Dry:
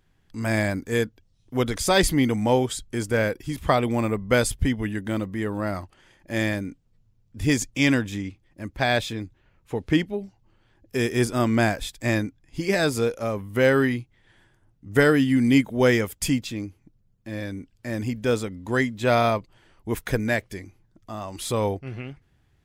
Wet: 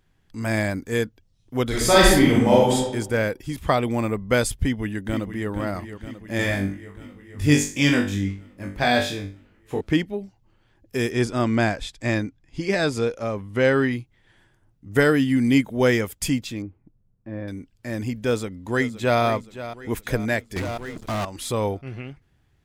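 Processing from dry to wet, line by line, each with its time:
1.67–2.75 reverb throw, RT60 0.88 s, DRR -5 dB
4.57–5.5 echo throw 0.47 s, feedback 70%, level -10 dB
6.37–9.81 flutter echo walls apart 3.5 m, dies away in 0.37 s
11.11–13.93 LPF 7000 Hz
16.62–17.48 LPF 1300 Hz
18.24–19.21 echo throw 0.52 s, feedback 50%, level -13.5 dB
20.56–21.25 sample leveller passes 5

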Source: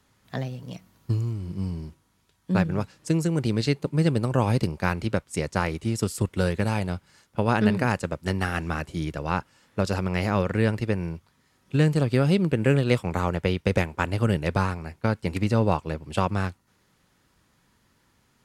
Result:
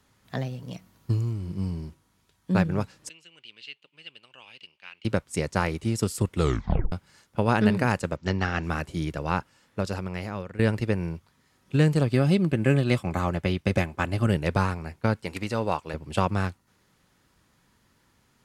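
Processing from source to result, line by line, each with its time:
3.09–5.05 band-pass 2900 Hz, Q 7.2
6.36 tape stop 0.56 s
8.16–8.64 steep low-pass 6800 Hz 48 dB/oct
9.3–10.59 fade out, to -16 dB
12.09–14.26 notch comb 470 Hz
15.23–15.94 low shelf 340 Hz -11 dB

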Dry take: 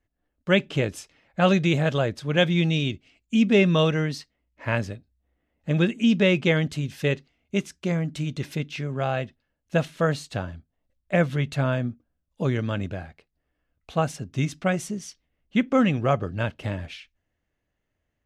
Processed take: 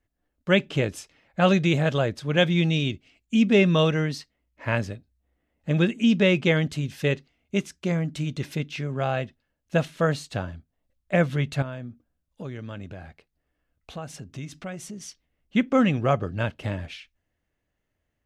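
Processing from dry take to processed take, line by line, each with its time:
11.62–15.01 compressor 2.5:1, threshold -37 dBFS

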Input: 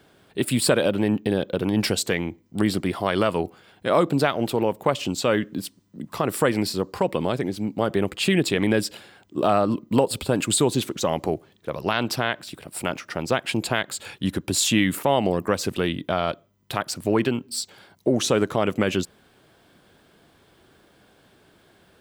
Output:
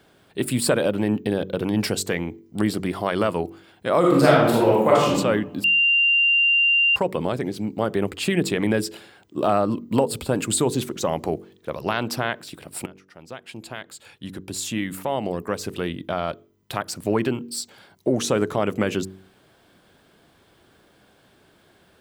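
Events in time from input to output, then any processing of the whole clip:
3.99–5.12 reverb throw, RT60 1 s, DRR -6 dB
5.64–6.96 bleep 2780 Hz -11.5 dBFS
12.86–17.02 fade in, from -22.5 dB
whole clip: de-hum 47.41 Hz, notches 10; dynamic EQ 3400 Hz, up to -4 dB, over -37 dBFS, Q 1.1

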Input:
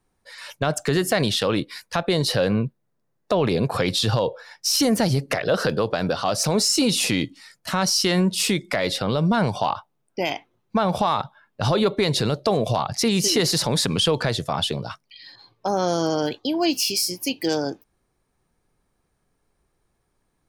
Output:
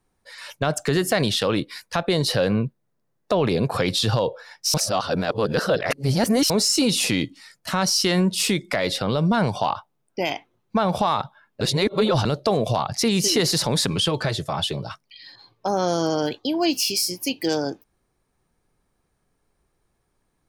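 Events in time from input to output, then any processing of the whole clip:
4.74–6.5 reverse
11.61–12.25 reverse
13.9–14.91 notch comb 240 Hz

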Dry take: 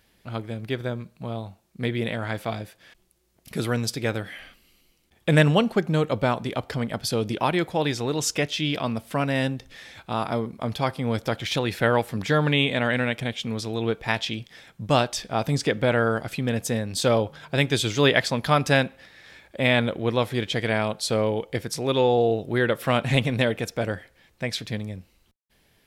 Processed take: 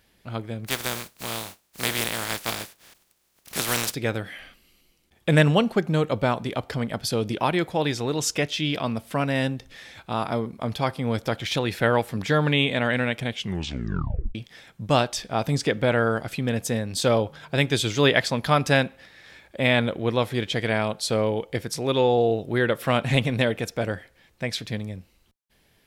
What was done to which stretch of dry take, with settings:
0.66–3.93 spectral contrast lowered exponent 0.29
13.35 tape stop 1.00 s

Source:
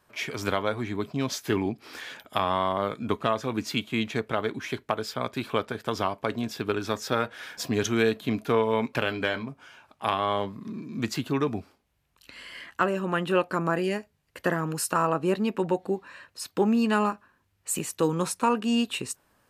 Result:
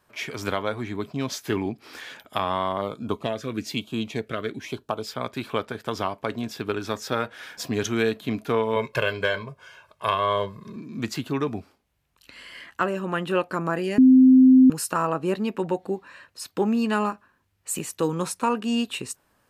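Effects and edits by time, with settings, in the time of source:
2.81–5.07 LFO notch sine 1.1 Hz 830–2100 Hz
8.76–10.76 comb 1.9 ms, depth 81%
13.98–14.7 bleep 259 Hz -9.5 dBFS

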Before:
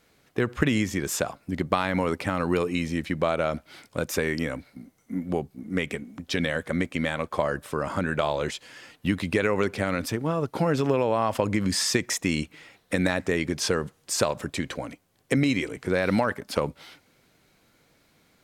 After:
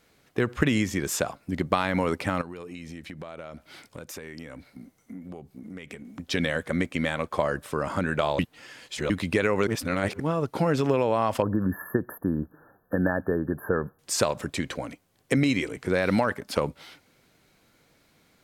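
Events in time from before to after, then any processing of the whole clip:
2.41–6.05 compressor 5:1, threshold -37 dBFS
8.39–9.1 reverse
9.67–10.2 reverse
11.42–13.99 brick-wall FIR band-stop 1800–11000 Hz

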